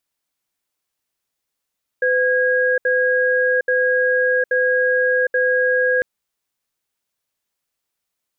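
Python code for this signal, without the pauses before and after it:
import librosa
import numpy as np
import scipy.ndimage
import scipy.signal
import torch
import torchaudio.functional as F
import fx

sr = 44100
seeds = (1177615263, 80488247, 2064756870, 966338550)

y = fx.cadence(sr, length_s=4.0, low_hz=506.0, high_hz=1640.0, on_s=0.76, off_s=0.07, level_db=-17.0)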